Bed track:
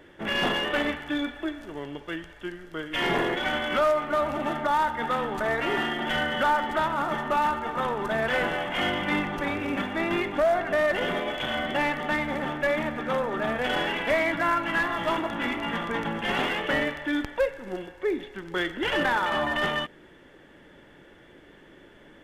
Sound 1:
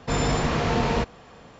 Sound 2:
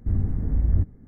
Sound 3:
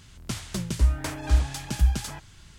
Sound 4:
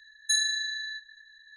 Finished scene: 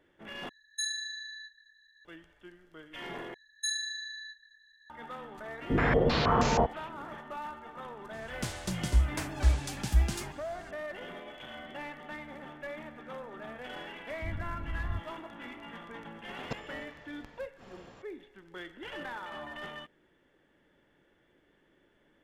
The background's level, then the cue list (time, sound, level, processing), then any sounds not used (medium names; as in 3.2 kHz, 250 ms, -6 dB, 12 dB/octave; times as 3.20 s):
bed track -16 dB
0.49 s: replace with 4 -8.5 dB
3.34 s: replace with 4 -7.5 dB
5.62 s: add 1 -4.5 dB + step-sequenced low-pass 6.3 Hz 330–6500 Hz
8.13 s: add 3 -4 dB + vibrato with a chosen wave saw down 6.9 Hz, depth 100 cents
14.16 s: add 2 -14.5 dB
16.43 s: add 1 -5.5 dB + inverted gate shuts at -18 dBFS, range -28 dB